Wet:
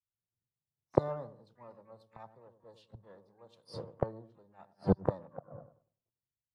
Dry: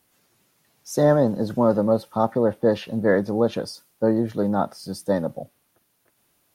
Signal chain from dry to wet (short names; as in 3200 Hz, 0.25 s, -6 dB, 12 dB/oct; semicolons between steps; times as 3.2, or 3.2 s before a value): low-pass opened by the level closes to 330 Hz, open at -18.5 dBFS; LPF 11000 Hz 12 dB/oct; dark delay 99 ms, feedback 38%, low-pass 530 Hz, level -6 dB; flipped gate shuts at -19 dBFS, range -31 dB; ten-band EQ 125 Hz +6 dB, 250 Hz -10 dB, 1000 Hz +9 dB, 2000 Hz -11 dB, 4000 Hz +9 dB, 8000 Hz -6 dB; harmoniser +12 st -14 dB; three-band expander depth 100%